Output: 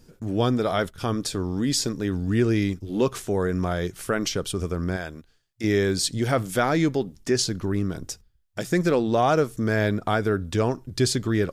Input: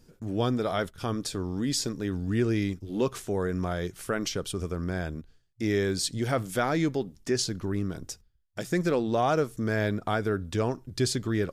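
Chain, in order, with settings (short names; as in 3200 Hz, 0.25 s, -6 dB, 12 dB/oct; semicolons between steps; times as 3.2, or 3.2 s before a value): 4.96–5.64 low shelf 380 Hz -11 dB; gain +4.5 dB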